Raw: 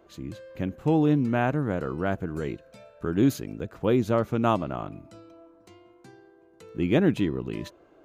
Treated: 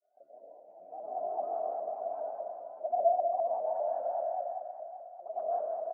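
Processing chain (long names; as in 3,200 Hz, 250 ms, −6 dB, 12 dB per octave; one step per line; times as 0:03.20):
gliding playback speed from 86% → 185%
comb filter 0.9 ms, depth 85%
gain into a clipping stage and back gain 18.5 dB
granular cloud, pitch spread up and down by 12 semitones
flat-topped band-pass 680 Hz, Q 7.1
convolution reverb RT60 2.8 s, pre-delay 108 ms, DRR −9 dB
pitch modulation by a square or saw wave saw up 5 Hz, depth 100 cents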